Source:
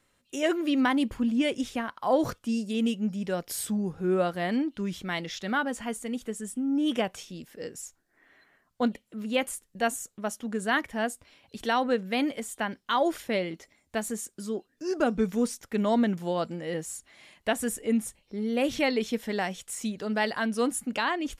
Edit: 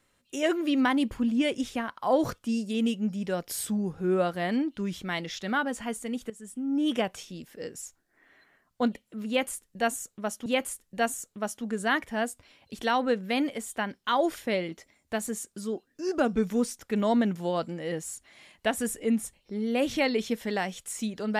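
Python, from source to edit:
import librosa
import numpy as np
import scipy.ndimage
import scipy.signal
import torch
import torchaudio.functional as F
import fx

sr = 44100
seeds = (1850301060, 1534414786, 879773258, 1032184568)

y = fx.edit(x, sr, fx.fade_in_from(start_s=6.3, length_s=0.51, floor_db=-14.0),
    fx.repeat(start_s=9.28, length_s=1.18, count=2), tone=tone)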